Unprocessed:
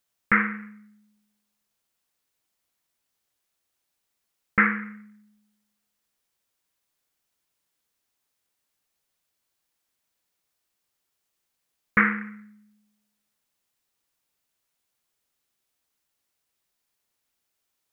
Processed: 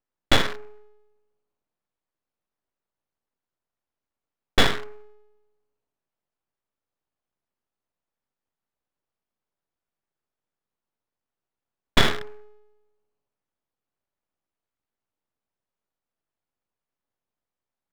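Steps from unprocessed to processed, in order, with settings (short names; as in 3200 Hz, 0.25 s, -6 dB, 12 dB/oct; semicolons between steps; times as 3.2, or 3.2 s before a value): Wiener smoothing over 25 samples; full-wave rectifier; gain +4 dB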